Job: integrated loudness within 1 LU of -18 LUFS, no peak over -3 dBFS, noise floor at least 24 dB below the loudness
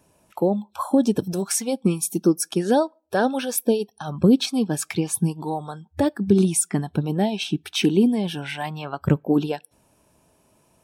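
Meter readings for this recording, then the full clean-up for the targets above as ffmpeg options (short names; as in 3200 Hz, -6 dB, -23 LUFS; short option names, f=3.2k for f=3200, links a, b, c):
loudness -22.5 LUFS; peak -5.5 dBFS; loudness target -18.0 LUFS
-> -af "volume=4.5dB,alimiter=limit=-3dB:level=0:latency=1"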